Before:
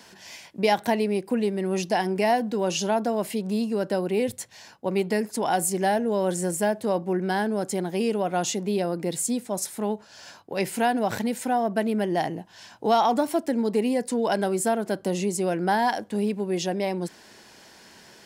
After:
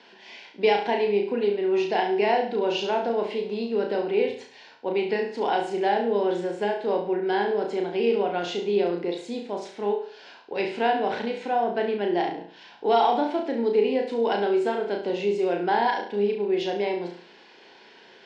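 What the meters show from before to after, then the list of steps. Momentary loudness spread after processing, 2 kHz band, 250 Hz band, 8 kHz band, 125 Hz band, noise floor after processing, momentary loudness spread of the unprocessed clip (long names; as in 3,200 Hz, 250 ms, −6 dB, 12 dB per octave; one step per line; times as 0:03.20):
8 LU, 0.0 dB, −3.5 dB, below −20 dB, −9.0 dB, −51 dBFS, 7 LU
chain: loudspeaker in its box 380–3,700 Hz, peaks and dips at 410 Hz +4 dB, 620 Hz −7 dB, 1,200 Hz −8 dB, 1,800 Hz −4 dB
flutter between parallel walls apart 5.9 metres, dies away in 0.49 s
level +1.5 dB
AAC 64 kbit/s 48,000 Hz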